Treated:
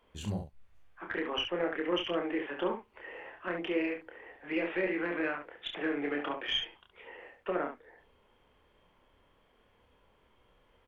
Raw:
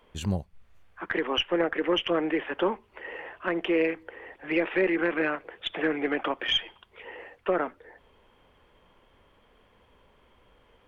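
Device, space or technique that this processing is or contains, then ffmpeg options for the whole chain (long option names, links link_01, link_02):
slapback doubling: -filter_complex "[0:a]asplit=3[link_01][link_02][link_03];[link_02]adelay=28,volume=-4dB[link_04];[link_03]adelay=69,volume=-7dB[link_05];[link_01][link_04][link_05]amix=inputs=3:normalize=0,volume=-8dB"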